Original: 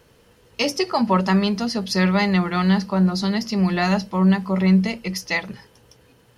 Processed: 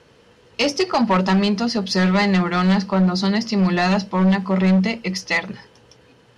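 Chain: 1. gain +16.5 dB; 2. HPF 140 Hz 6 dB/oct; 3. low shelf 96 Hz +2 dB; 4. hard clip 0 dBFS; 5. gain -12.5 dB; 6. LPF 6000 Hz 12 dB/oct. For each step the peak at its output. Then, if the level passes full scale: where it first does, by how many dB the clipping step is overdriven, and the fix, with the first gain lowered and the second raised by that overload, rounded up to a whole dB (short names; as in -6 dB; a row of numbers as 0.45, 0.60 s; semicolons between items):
+9.5, +10.0, +10.0, 0.0, -12.5, -11.5 dBFS; step 1, 10.0 dB; step 1 +6.5 dB, step 5 -2.5 dB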